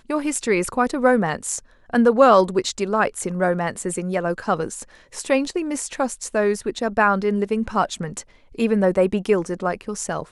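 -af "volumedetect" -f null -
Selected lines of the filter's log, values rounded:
mean_volume: -21.2 dB
max_volume: -1.4 dB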